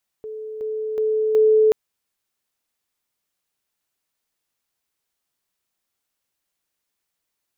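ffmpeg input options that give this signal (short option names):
-f lavfi -i "aevalsrc='pow(10,(-29.5+6*floor(t/0.37))/20)*sin(2*PI*434*t)':d=1.48:s=44100"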